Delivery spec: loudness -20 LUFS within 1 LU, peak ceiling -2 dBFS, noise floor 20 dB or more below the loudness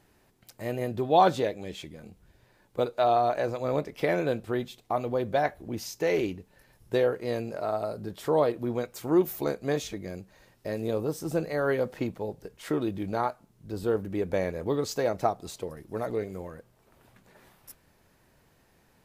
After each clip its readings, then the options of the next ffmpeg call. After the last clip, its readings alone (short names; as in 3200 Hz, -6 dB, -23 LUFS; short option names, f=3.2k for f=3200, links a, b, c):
loudness -29.0 LUFS; peak -8.0 dBFS; loudness target -20.0 LUFS
-> -af "volume=9dB,alimiter=limit=-2dB:level=0:latency=1"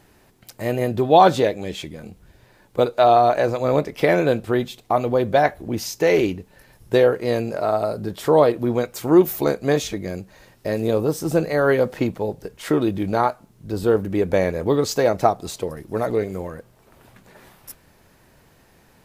loudness -20.5 LUFS; peak -2.0 dBFS; noise floor -56 dBFS